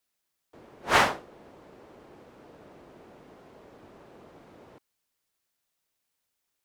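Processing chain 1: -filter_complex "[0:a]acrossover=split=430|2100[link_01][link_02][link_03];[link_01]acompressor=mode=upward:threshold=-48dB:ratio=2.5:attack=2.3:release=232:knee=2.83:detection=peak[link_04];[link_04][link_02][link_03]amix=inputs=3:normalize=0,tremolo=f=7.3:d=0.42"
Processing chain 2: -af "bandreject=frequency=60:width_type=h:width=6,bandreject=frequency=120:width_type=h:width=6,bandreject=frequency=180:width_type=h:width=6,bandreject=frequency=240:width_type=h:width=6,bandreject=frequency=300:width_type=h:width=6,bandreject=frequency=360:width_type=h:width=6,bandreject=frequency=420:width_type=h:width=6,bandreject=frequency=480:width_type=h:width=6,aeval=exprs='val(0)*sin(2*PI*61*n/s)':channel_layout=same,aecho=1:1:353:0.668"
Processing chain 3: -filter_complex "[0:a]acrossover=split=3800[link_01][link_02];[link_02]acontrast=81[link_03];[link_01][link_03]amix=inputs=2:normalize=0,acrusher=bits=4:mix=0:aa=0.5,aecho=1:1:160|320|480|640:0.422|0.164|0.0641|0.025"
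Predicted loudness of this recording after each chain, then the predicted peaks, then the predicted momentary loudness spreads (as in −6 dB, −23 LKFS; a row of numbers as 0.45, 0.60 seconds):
−26.5, −28.0, −23.5 LKFS; −6.5, −9.0, −5.5 dBFS; 12, 16, 15 LU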